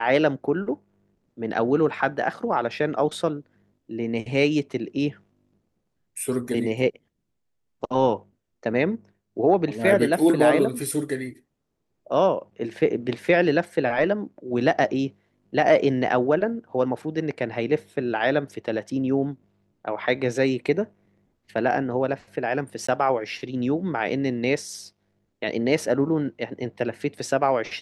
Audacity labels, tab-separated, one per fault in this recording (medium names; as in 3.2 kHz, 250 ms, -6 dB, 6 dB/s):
22.870000	22.890000	dropout 15 ms